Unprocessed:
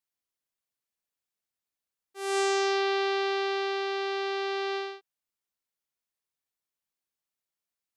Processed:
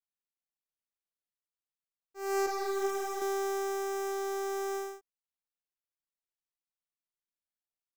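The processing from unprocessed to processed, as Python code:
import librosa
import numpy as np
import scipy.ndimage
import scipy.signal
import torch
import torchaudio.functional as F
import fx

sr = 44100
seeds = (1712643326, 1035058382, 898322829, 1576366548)

y = fx.dead_time(x, sr, dead_ms=0.14)
y = fx.ensemble(y, sr, at=(2.46, 3.22))
y = y * 10.0 ** (-2.0 / 20.0)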